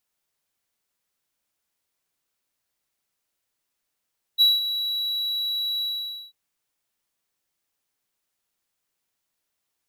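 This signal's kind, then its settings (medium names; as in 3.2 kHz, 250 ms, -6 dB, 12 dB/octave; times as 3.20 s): ADSR triangle 3.91 kHz, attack 33 ms, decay 187 ms, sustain -11.5 dB, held 1.44 s, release 502 ms -10.5 dBFS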